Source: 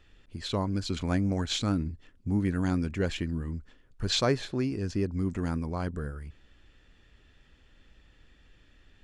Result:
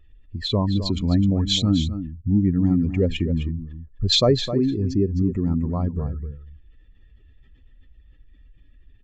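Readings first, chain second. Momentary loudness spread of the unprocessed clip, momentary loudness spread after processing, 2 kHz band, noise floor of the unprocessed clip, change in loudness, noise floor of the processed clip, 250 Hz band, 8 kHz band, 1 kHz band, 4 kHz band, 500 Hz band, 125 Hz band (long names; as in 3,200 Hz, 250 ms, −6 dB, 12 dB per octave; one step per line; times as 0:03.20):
12 LU, 11 LU, −2.0 dB, −61 dBFS, +8.5 dB, −53 dBFS, +9.0 dB, +4.0 dB, +2.5 dB, +10.0 dB, +8.0 dB, +9.0 dB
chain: expanding power law on the bin magnitudes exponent 1.8
dynamic equaliser 8,000 Hz, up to +4 dB, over −52 dBFS, Q 0.94
Butterworth band-reject 1,500 Hz, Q 5
single-tap delay 259 ms −10.5 dB
level +8.5 dB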